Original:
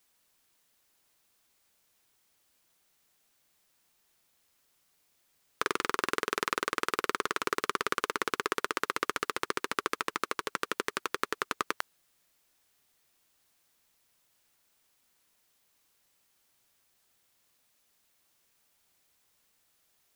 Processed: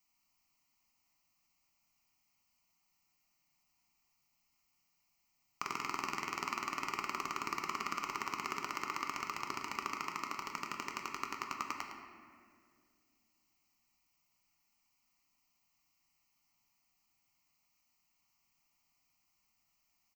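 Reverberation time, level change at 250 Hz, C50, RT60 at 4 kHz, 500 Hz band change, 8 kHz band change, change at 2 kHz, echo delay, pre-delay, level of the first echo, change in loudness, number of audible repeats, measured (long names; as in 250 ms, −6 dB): 2.1 s, −7.5 dB, 3.5 dB, 1.3 s, −15.0 dB, −7.0 dB, −8.5 dB, 109 ms, 4 ms, −10.0 dB, −7.0 dB, 1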